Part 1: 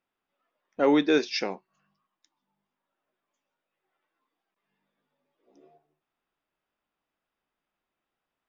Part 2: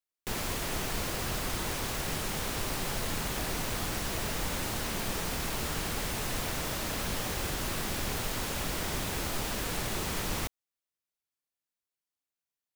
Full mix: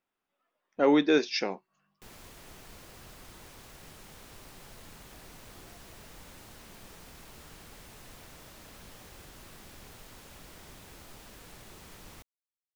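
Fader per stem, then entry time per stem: -1.0, -17.0 dB; 0.00, 1.75 s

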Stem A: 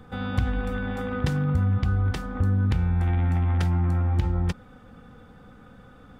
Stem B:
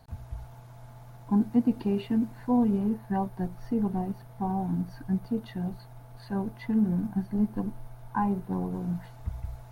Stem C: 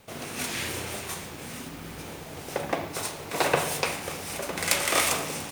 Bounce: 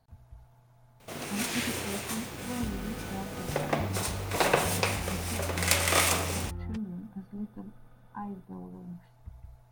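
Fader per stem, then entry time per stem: -13.5, -12.0, -1.0 dB; 2.25, 0.00, 1.00 s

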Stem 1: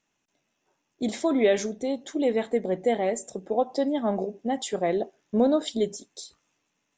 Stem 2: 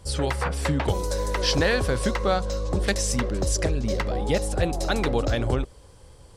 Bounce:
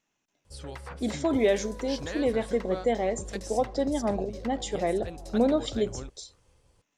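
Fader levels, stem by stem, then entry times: -2.0, -15.0 dB; 0.00, 0.45 s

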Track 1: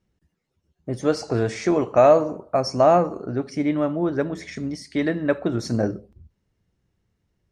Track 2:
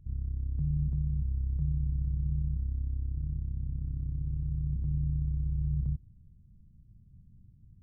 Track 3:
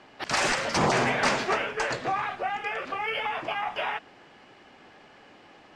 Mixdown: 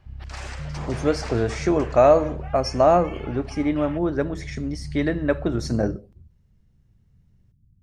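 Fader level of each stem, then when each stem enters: -0.5, -3.0, -13.5 dB; 0.00, 0.00, 0.00 s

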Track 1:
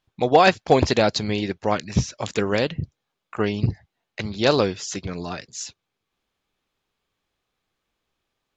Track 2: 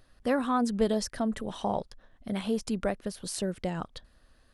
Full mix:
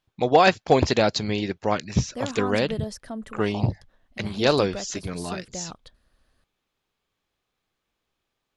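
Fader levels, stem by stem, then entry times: -1.5, -5.0 dB; 0.00, 1.90 s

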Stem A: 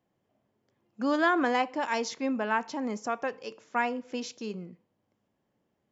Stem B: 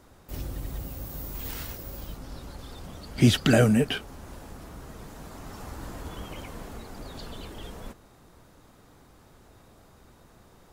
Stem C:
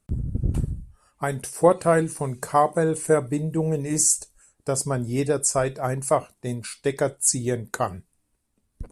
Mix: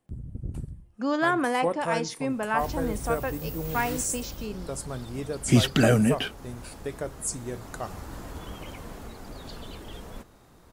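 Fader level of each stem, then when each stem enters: +0.5, -0.5, -10.5 dB; 0.00, 2.30, 0.00 s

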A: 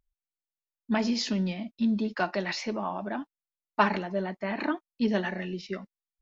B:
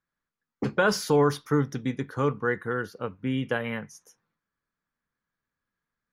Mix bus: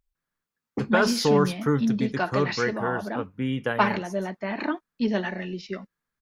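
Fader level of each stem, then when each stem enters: +1.5, +0.5 dB; 0.00, 0.15 s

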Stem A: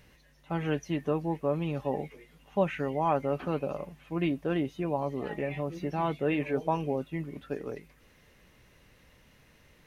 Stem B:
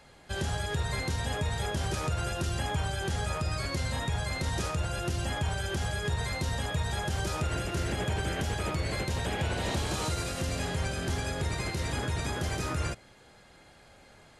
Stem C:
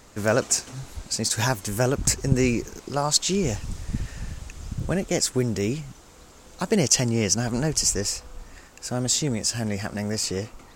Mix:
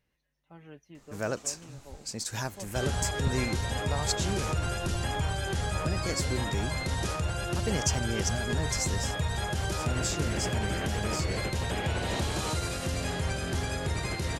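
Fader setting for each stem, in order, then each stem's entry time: -19.0, +0.5, -10.5 dB; 0.00, 2.45, 0.95 s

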